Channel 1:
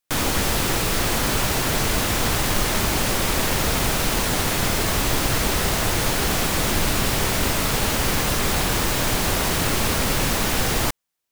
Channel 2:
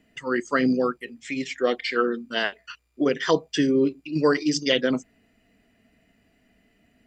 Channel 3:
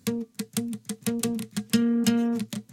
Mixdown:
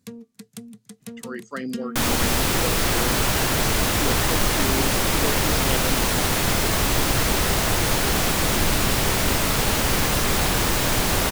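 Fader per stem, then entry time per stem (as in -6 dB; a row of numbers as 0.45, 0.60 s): +0.5, -9.5, -10.0 dB; 1.85, 1.00, 0.00 s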